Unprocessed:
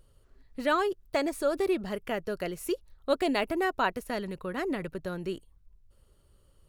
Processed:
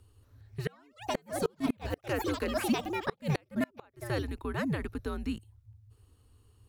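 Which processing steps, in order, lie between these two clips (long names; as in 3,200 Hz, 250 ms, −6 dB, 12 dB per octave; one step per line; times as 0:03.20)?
delay with pitch and tempo change per echo 228 ms, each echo +5 semitones, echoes 3, each echo −6 dB
frequency shifter −120 Hz
gate with flip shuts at −18 dBFS, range −34 dB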